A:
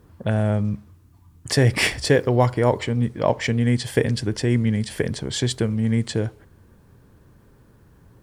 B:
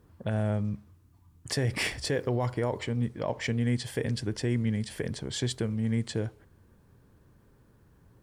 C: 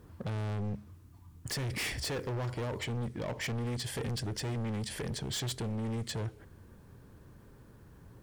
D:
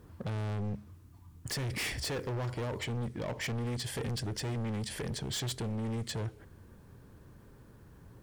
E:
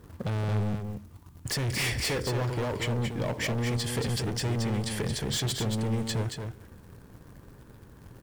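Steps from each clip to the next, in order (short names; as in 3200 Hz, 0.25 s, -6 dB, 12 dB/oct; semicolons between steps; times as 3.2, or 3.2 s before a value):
limiter -11.5 dBFS, peak gain reduction 6.5 dB; gain -7.5 dB
dynamic EQ 810 Hz, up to -5 dB, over -43 dBFS, Q 0.71; in parallel at -2 dB: compressor, threshold -40 dBFS, peak gain reduction 15 dB; on the sum: hard clip -32.5 dBFS, distortion -6 dB
nothing audible
in parallel at -10.5 dB: bit-crush 8-bit; on the sum: echo 0.226 s -6 dB; gain +3 dB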